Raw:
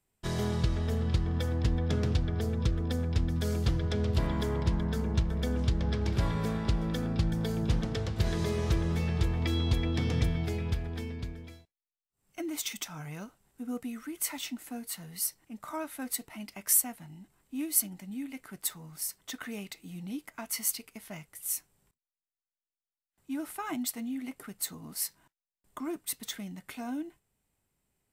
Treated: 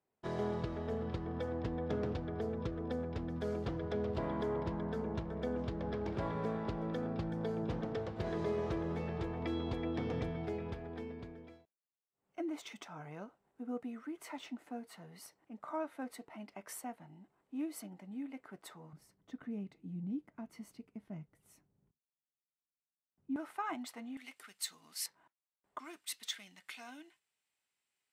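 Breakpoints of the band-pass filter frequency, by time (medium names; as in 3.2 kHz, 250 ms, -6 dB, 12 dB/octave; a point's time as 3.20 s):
band-pass filter, Q 0.78
590 Hz
from 18.93 s 180 Hz
from 23.36 s 1 kHz
from 24.17 s 3.4 kHz
from 25.06 s 860 Hz
from 25.79 s 3.1 kHz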